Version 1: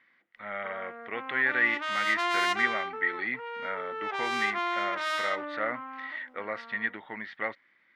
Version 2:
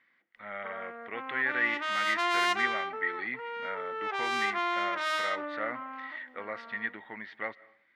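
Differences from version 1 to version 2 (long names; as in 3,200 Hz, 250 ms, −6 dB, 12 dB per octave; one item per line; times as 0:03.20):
speech −4.5 dB
reverb: on, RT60 0.60 s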